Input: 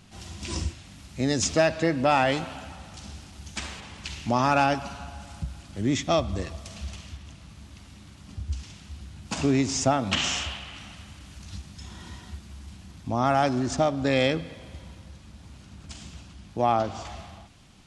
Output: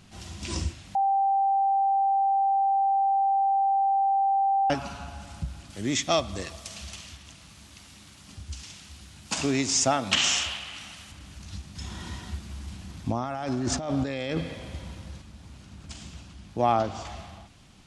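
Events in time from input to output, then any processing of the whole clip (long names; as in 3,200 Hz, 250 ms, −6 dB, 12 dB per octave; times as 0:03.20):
0:00.95–0:04.70: beep over 785 Hz −20 dBFS
0:05.70–0:11.12: spectral tilt +2 dB per octave
0:11.75–0:15.22: compressor whose output falls as the input rises −29 dBFS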